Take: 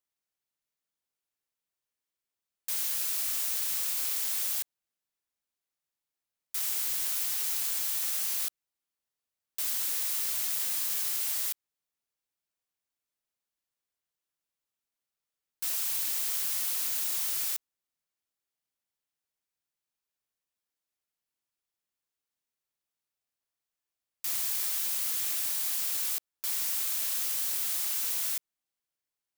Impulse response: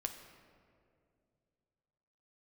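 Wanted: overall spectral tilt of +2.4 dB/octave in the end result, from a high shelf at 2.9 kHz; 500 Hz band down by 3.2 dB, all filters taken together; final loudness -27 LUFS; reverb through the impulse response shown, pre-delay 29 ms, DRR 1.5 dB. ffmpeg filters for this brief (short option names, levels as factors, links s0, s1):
-filter_complex "[0:a]equalizer=f=500:t=o:g=-4,highshelf=f=2900:g=-4.5,asplit=2[s0][s1];[1:a]atrim=start_sample=2205,adelay=29[s2];[s1][s2]afir=irnorm=-1:irlink=0,volume=0.891[s3];[s0][s3]amix=inputs=2:normalize=0,volume=1.5"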